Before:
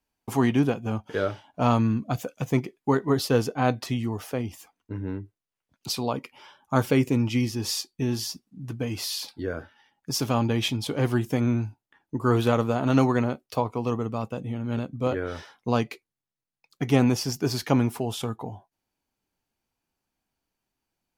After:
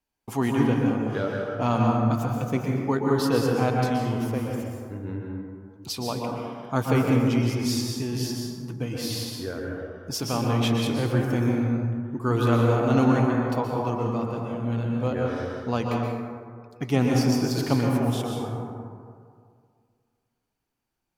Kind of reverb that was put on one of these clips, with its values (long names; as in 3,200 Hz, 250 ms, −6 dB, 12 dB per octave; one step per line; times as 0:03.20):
dense smooth reverb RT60 2.1 s, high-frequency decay 0.35×, pre-delay 110 ms, DRR −1 dB
level −3 dB